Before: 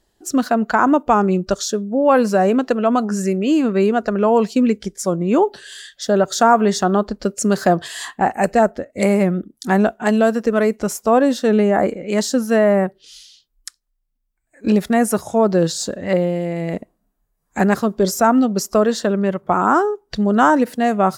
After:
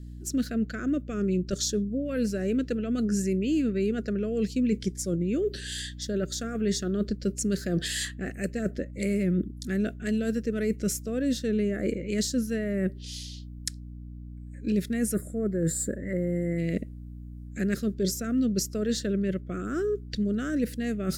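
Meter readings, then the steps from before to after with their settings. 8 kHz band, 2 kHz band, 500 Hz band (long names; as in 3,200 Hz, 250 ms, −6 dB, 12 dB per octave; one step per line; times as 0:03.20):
−5.5 dB, −14.0 dB, −14.0 dB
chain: gain on a spectral selection 0:15.14–0:16.59, 2,200–7,000 Hz −22 dB
parametric band 3,000 Hz −2 dB 0.22 octaves
reversed playback
downward compressor 5 to 1, threshold −25 dBFS, peak gain reduction 15 dB
reversed playback
mains hum 60 Hz, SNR 14 dB
Butterworth band-reject 900 Hz, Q 0.67
level +1.5 dB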